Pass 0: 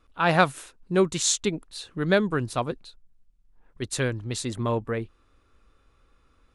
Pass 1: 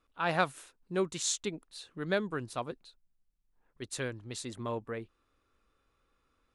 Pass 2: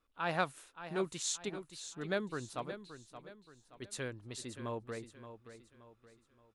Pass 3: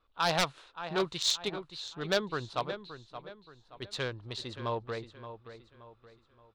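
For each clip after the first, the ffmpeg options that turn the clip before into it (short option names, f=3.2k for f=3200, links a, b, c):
-af "lowshelf=f=140:g=-8,volume=-8.5dB"
-af "aecho=1:1:574|1148|1722|2296:0.266|0.104|0.0405|0.0158,volume=-4.5dB"
-af "adynamicsmooth=sensitivity=6:basefreq=2.5k,aeval=exprs='0.0422*(abs(mod(val(0)/0.0422+3,4)-2)-1)':c=same,equalizer=f=250:t=o:w=1:g=-7,equalizer=f=1k:t=o:w=1:g=3,equalizer=f=2k:t=o:w=1:g=-3,equalizer=f=4k:t=o:w=1:g=12,volume=7dB"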